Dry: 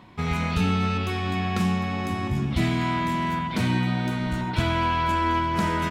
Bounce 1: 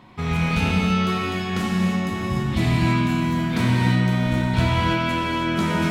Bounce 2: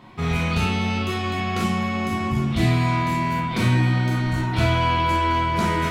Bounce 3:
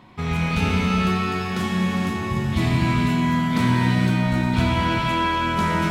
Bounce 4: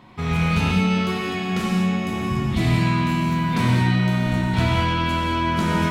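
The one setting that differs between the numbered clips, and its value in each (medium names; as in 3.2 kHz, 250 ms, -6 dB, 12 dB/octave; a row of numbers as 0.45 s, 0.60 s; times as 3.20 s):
gated-style reverb, gate: 350 ms, 80 ms, 530 ms, 240 ms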